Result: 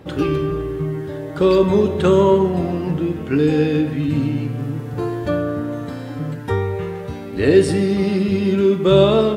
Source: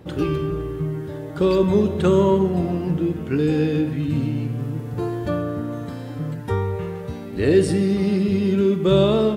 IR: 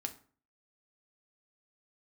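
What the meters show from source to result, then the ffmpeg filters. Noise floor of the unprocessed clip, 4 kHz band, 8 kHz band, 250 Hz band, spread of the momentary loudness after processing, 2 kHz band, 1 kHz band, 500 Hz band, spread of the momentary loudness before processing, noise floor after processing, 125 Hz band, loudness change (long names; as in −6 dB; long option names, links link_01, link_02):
−33 dBFS, +4.0 dB, can't be measured, +2.0 dB, 13 LU, +5.0 dB, +4.5 dB, +4.0 dB, 12 LU, −30 dBFS, +1.0 dB, +3.0 dB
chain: -filter_complex "[0:a]asplit=2[link_01][link_02];[1:a]atrim=start_sample=2205,lowshelf=frequency=270:gain=-11,highshelf=frequency=7300:gain=-10.5[link_03];[link_02][link_03]afir=irnorm=-1:irlink=0,volume=4dB[link_04];[link_01][link_04]amix=inputs=2:normalize=0,volume=-2dB"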